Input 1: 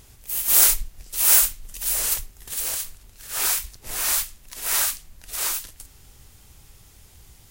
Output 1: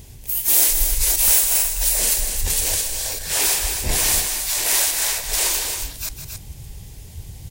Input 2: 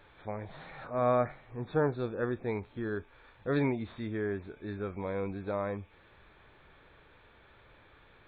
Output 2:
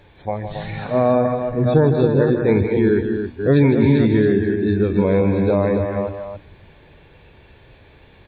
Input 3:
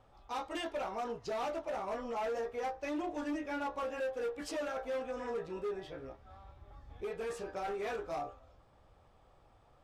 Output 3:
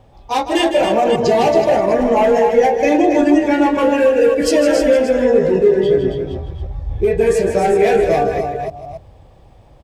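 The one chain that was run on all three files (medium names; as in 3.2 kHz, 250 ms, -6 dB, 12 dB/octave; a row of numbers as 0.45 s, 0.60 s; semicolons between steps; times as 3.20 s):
chunks repeated in reverse 290 ms, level -7.5 dB; high-pass 48 Hz 6 dB/octave; compression 3:1, threshold -32 dBFS; peaking EQ 1.3 kHz -12 dB 0.4 oct; hum notches 60/120/180/240/300 Hz; spectral noise reduction 9 dB; integer overflow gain 17 dB; bass shelf 260 Hz +9.5 dB; loudspeakers at several distances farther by 54 m -9 dB, 94 m -7 dB; peak normalisation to -2 dBFS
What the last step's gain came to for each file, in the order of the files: +14.0 dB, +16.5 dB, +22.0 dB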